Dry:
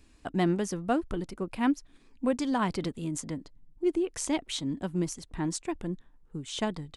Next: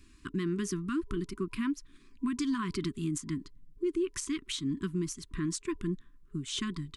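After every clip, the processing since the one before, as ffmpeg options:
ffmpeg -i in.wav -af "afftfilt=real='re*(1-between(b*sr/4096,410,990))':imag='im*(1-between(b*sr/4096,410,990))':win_size=4096:overlap=0.75,alimiter=level_in=1.5dB:limit=-24dB:level=0:latency=1:release=135,volume=-1.5dB,volume=1.5dB" out.wav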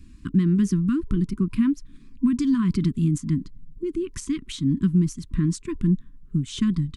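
ffmpeg -i in.wav -af "acontrast=89,lowshelf=frequency=310:width_type=q:width=1.5:gain=12,volume=-7dB" out.wav

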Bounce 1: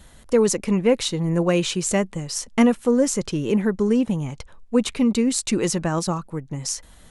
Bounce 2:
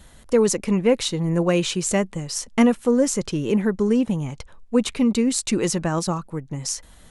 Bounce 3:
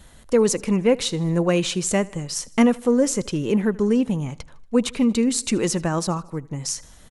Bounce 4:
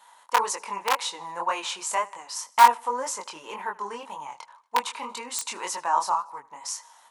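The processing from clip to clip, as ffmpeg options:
ffmpeg -i in.wav -af anull out.wav
ffmpeg -i in.wav -af "aecho=1:1:78|156|234|312:0.0708|0.0404|0.023|0.0131" out.wav
ffmpeg -i in.wav -af "aeval=exprs='(mod(2.51*val(0)+1,2)-1)/2.51':channel_layout=same,highpass=frequency=940:width_type=q:width=9.1,flanger=delay=20:depth=5.7:speed=1.9,volume=-2.5dB" out.wav

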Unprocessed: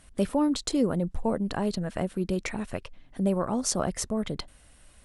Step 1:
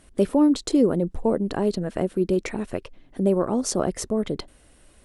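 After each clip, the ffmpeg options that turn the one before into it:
ffmpeg -i in.wav -af "equalizer=frequency=370:width_type=o:width=1.2:gain=9.5" out.wav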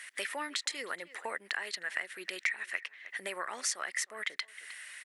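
ffmpeg -i in.wav -filter_complex "[0:a]highpass=frequency=1900:width_type=q:width=6.5,asplit=2[link_01][link_02];[link_02]adelay=310,highpass=300,lowpass=3400,asoftclip=type=hard:threshold=-19dB,volume=-22dB[link_03];[link_01][link_03]amix=inputs=2:normalize=0,acompressor=threshold=-45dB:ratio=2.5,volume=8dB" out.wav

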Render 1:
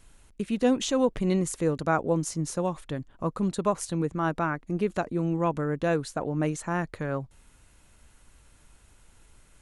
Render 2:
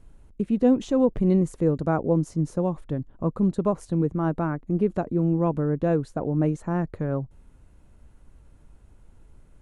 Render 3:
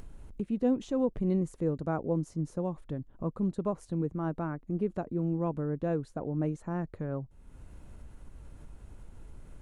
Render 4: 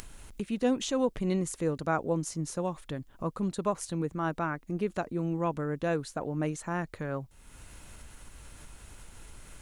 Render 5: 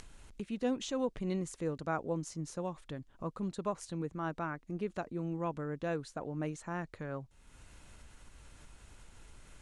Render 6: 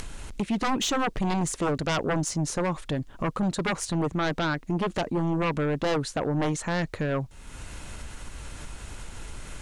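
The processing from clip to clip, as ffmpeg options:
ffmpeg -i in.wav -af "tiltshelf=frequency=1100:gain=9.5,volume=-3.5dB" out.wav
ffmpeg -i in.wav -af "acompressor=mode=upward:threshold=-26dB:ratio=2.5,volume=-8dB" out.wav
ffmpeg -i in.wav -af "tiltshelf=frequency=1100:gain=-9.5,volume=7.5dB" out.wav
ffmpeg -i in.wav -af "lowpass=8200,volume=-6dB" out.wav
ffmpeg -i in.wav -af "aeval=exprs='0.0841*sin(PI/2*3.98*val(0)/0.0841)':channel_layout=same" out.wav

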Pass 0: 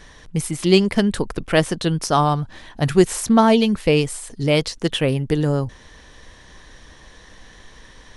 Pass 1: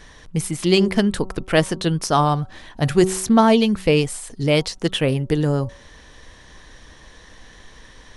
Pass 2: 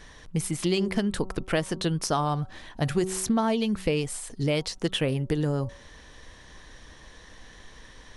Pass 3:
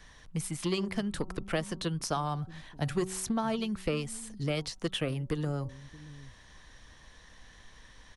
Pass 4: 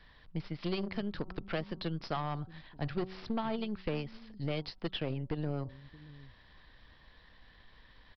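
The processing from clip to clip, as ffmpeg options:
ffmpeg -i in.wav -af "bandreject=frequency=188.1:width_type=h:width=4,bandreject=frequency=376.2:width_type=h:width=4,bandreject=frequency=564.3:width_type=h:width=4,bandreject=frequency=752.4:width_type=h:width=4,bandreject=frequency=940.5:width_type=h:width=4,bandreject=frequency=1128.6:width_type=h:width=4,bandreject=frequency=1316.7:width_type=h:width=4" out.wav
ffmpeg -i in.wav -af "acompressor=threshold=-18dB:ratio=6,volume=-3.5dB" out.wav
ffmpeg -i in.wav -filter_complex "[0:a]acrossover=split=320|470|2200[link_01][link_02][link_03][link_04];[link_01]aecho=1:1:627:0.188[link_05];[link_02]acrusher=bits=4:mix=0:aa=0.5[link_06];[link_05][link_06][link_03][link_04]amix=inputs=4:normalize=0,volume=-5.5dB" out.wav
ffmpeg -i in.wav -af "aeval=exprs='0.158*(cos(1*acos(clip(val(0)/0.158,-1,1)))-cos(1*PI/2))+0.0141*(cos(8*acos(clip(val(0)/0.158,-1,1)))-cos(8*PI/2))':channel_layout=same,aresample=11025,aresample=44100,volume=-4.5dB" out.wav

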